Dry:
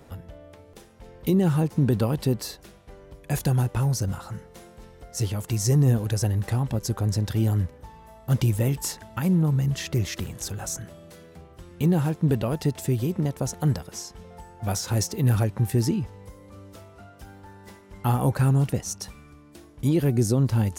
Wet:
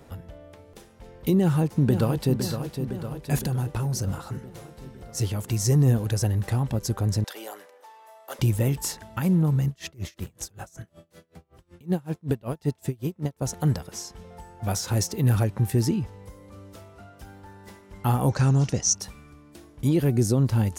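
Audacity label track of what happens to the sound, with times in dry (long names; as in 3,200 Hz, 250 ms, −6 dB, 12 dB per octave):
1.370000	2.370000	delay throw 510 ms, feedback 65%, level −8 dB
3.450000	4.060000	downward compressor 3 to 1, threshold −24 dBFS
7.240000	8.390000	high-pass filter 490 Hz 24 dB per octave
9.670000	13.420000	tremolo with a sine in dB 5.3 Hz, depth 29 dB
18.290000	18.950000	low-pass with resonance 6,000 Hz, resonance Q 4.4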